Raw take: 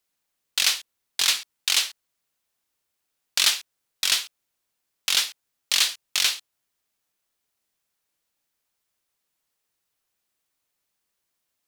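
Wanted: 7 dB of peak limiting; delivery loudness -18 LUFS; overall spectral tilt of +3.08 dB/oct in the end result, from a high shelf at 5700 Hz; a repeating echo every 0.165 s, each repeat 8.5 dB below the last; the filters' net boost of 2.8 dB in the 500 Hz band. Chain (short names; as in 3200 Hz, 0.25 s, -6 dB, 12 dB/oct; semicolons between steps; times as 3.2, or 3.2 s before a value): bell 500 Hz +3.5 dB; high shelf 5700 Hz +8 dB; limiter -8 dBFS; feedback echo 0.165 s, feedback 38%, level -8.5 dB; gain +5 dB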